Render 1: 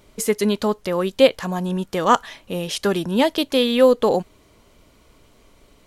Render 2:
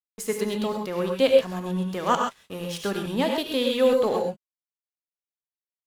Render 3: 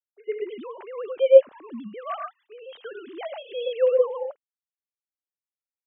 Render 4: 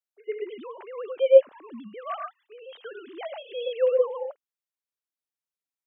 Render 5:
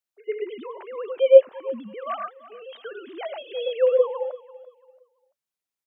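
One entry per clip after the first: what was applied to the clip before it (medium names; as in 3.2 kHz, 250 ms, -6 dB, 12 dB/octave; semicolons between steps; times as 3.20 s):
crossover distortion -35.5 dBFS; gated-style reverb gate 150 ms rising, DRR 2 dB; trim -7 dB
formants replaced by sine waves
bass shelf 160 Hz -11 dB; trim -1 dB
feedback delay 338 ms, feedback 30%, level -18.5 dB; trim +3 dB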